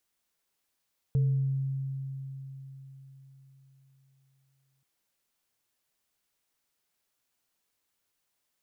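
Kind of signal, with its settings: sine partials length 3.68 s, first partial 135 Hz, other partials 445 Hz, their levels -17.5 dB, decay 4.28 s, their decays 0.78 s, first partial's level -21 dB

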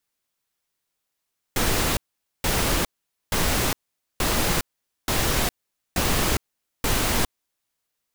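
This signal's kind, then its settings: noise bursts pink, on 0.41 s, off 0.47 s, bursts 7, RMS -22 dBFS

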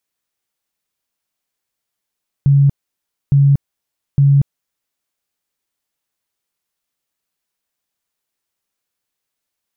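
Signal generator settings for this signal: tone bursts 140 Hz, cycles 33, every 0.86 s, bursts 3, -7 dBFS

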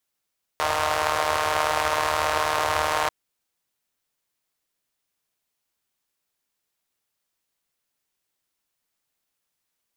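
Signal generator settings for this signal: four-cylinder engine model, steady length 2.49 s, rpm 4600, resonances 86/680/970 Hz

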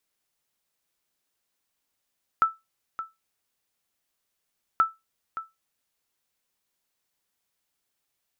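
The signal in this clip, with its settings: sonar ping 1320 Hz, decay 0.20 s, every 2.38 s, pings 2, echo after 0.57 s, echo -13 dB -12 dBFS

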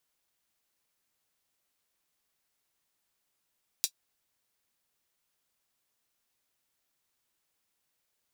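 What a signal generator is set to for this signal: closed hi-hat, high-pass 4300 Hz, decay 0.08 s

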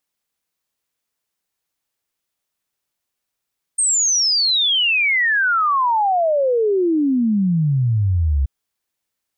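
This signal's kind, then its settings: log sweep 8700 Hz -> 65 Hz 4.68 s -14 dBFS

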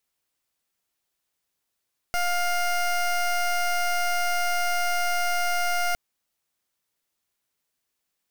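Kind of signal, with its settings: pulse 705 Hz, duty 19% -24 dBFS 3.81 s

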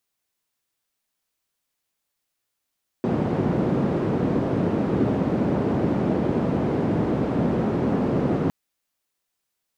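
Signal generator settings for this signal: noise band 140–300 Hz, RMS -22.5 dBFS 5.46 s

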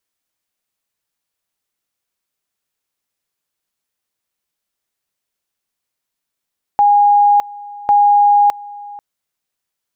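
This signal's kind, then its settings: two-level tone 820 Hz -7 dBFS, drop 21.5 dB, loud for 0.61 s, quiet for 0.49 s, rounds 2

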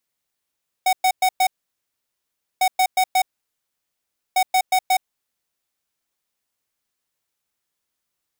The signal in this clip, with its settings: beep pattern square 747 Hz, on 0.07 s, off 0.11 s, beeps 4, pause 1.14 s, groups 3, -16.5 dBFS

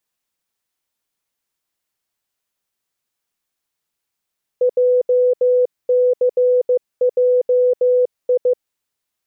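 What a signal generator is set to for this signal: Morse "JCJI" 15 wpm 498 Hz -11 dBFS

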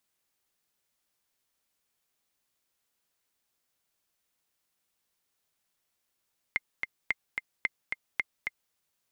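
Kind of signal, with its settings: metronome 220 bpm, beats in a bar 2, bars 4, 2100 Hz, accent 4.5 dB -13.5 dBFS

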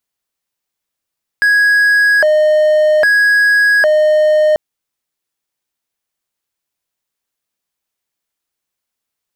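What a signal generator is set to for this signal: siren hi-lo 613–1660 Hz 0.62/s triangle -5.5 dBFS 3.14 s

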